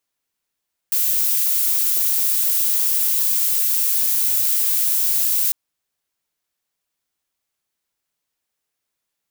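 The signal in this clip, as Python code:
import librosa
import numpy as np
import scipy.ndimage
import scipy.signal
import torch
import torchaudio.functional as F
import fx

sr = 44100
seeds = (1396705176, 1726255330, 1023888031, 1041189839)

y = fx.noise_colour(sr, seeds[0], length_s=4.6, colour='violet', level_db=-18.5)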